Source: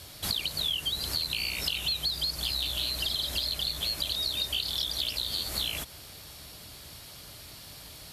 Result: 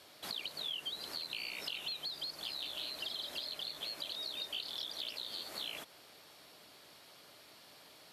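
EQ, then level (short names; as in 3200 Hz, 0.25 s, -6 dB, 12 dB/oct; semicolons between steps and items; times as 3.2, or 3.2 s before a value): HPF 310 Hz 12 dB/oct; high shelf 4200 Hz -11.5 dB; -5.5 dB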